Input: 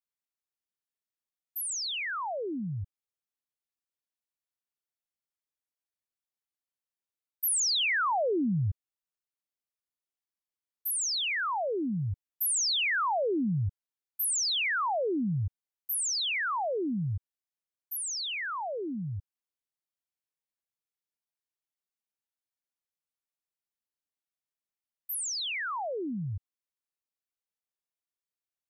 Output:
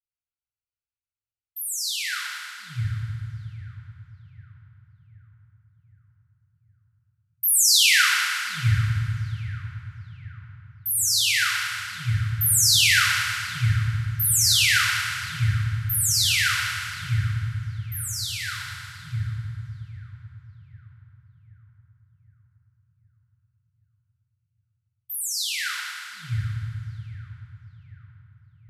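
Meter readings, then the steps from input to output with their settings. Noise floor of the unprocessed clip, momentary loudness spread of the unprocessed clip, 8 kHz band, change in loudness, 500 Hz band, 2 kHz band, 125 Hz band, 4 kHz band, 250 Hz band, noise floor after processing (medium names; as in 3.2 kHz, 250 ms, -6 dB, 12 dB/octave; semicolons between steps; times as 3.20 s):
under -85 dBFS, 12 LU, +9.5 dB, +8.0 dB, under -40 dB, +9.5 dB, +11.0 dB, +10.0 dB, no reading, under -85 dBFS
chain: local Wiener filter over 25 samples; Chebyshev band-stop 120–1400 Hz, order 4; hum notches 50/100/150 Hz; on a send: filtered feedback delay 769 ms, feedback 56%, low-pass 1.7 kHz, level -14.5 dB; on the sum: FDN reverb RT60 2.5 s, low-frequency decay 1.55×, high-frequency decay 0.85×, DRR -4.5 dB; trim +6.5 dB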